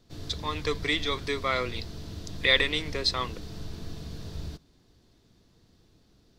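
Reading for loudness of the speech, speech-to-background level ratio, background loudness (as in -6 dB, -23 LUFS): -28.0 LUFS, 12.5 dB, -40.5 LUFS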